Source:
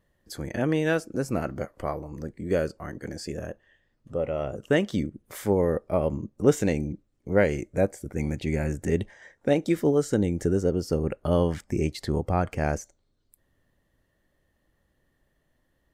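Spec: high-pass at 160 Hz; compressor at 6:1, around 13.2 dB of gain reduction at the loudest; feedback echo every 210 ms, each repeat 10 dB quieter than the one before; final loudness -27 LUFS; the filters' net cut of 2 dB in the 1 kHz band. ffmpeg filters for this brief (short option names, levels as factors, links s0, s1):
-af "highpass=160,equalizer=f=1000:t=o:g=-3,acompressor=threshold=0.0398:ratio=6,aecho=1:1:210|420|630|840:0.316|0.101|0.0324|0.0104,volume=2.51"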